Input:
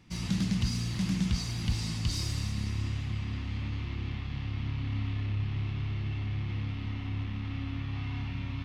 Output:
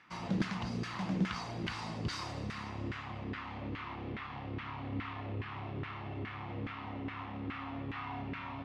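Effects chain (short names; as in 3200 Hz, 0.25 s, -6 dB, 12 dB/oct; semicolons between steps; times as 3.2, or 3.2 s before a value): LFO band-pass saw down 2.4 Hz 390–1600 Hz; gain +12 dB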